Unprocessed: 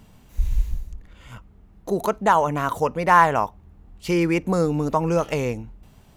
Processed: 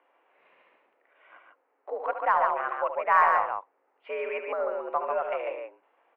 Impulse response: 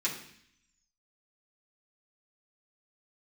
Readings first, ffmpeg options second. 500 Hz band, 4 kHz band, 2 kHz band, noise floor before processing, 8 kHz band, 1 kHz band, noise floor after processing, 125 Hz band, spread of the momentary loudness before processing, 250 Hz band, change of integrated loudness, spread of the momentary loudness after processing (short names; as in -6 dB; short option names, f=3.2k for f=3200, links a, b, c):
-6.5 dB, under -10 dB, -4.0 dB, -52 dBFS, under -30 dB, -4.5 dB, -72 dBFS, under -35 dB, 16 LU, under -25 dB, -5.5 dB, 16 LU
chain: -af "highpass=f=400:t=q:w=0.5412,highpass=f=400:t=q:w=1.307,lowpass=f=2.4k:t=q:w=0.5176,lowpass=f=2.4k:t=q:w=0.7071,lowpass=f=2.4k:t=q:w=1.932,afreqshift=81,aeval=exprs='0.794*(cos(1*acos(clip(val(0)/0.794,-1,1)))-cos(1*PI/2))+0.00501*(cos(6*acos(clip(val(0)/0.794,-1,1)))-cos(6*PI/2))':c=same,aecho=1:1:72.89|142.9:0.355|0.631,volume=-6.5dB"